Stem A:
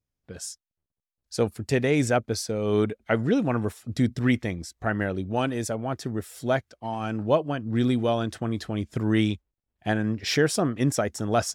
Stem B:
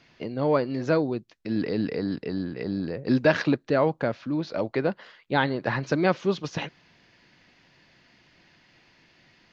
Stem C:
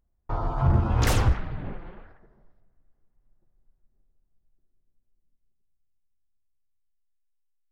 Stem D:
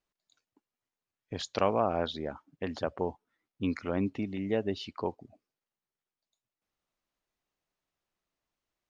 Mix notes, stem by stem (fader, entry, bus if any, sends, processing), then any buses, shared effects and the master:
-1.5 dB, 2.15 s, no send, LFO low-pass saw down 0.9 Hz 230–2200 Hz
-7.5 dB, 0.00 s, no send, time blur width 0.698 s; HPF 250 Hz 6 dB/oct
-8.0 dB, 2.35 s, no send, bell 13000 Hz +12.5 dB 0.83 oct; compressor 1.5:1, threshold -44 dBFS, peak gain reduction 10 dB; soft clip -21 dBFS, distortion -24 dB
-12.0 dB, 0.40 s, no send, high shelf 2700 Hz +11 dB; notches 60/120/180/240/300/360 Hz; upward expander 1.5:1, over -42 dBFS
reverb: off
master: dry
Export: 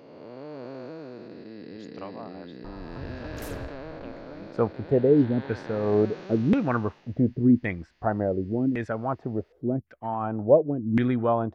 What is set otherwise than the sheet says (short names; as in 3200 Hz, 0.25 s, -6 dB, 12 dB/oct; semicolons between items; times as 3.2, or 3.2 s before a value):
stem A: entry 2.15 s -> 3.20 s; stem D: missing high shelf 2700 Hz +11 dB